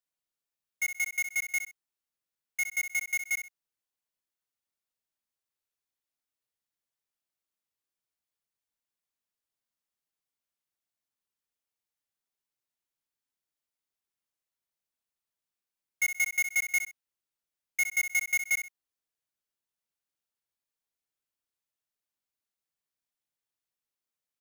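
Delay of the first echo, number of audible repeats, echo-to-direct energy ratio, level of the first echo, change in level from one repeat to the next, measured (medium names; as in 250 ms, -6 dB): 64 ms, 2, -9.0 dB, -9.5 dB, -11.5 dB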